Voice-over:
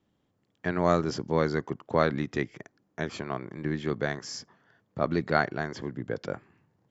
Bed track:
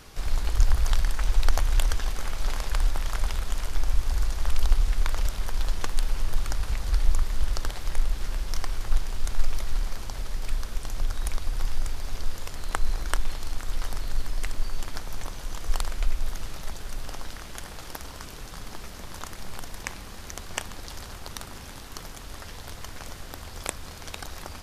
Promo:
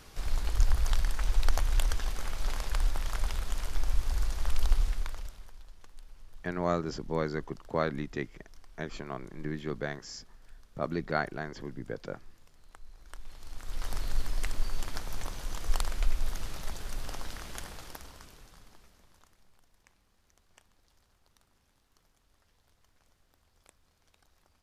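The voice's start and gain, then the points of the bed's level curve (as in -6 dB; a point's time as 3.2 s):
5.80 s, -5.5 dB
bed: 4.83 s -4.5 dB
5.66 s -25.5 dB
12.93 s -25.5 dB
13.95 s -2.5 dB
17.59 s -2.5 dB
19.56 s -29.5 dB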